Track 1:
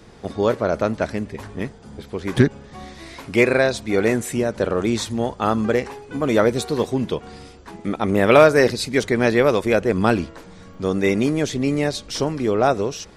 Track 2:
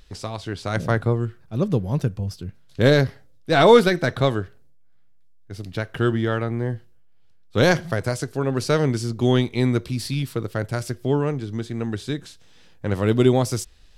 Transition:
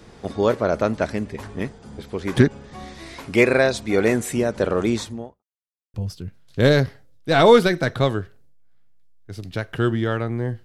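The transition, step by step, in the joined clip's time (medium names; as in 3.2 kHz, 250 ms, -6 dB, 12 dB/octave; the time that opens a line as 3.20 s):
track 1
4.83–5.43 s: studio fade out
5.43–5.94 s: mute
5.94 s: go over to track 2 from 2.15 s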